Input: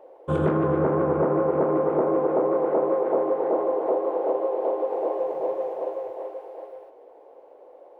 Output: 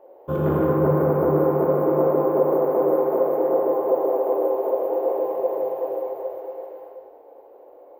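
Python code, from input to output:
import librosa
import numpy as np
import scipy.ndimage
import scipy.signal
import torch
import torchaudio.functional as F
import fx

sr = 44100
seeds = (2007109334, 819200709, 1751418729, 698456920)

y = np.repeat(x[::3], 3)[:len(x)]
y = fx.high_shelf(y, sr, hz=2200.0, db=-9.0)
y = fx.rev_gated(y, sr, seeds[0], gate_ms=300, shape='flat', drr_db=-2.5)
y = y * librosa.db_to_amplitude(-1.5)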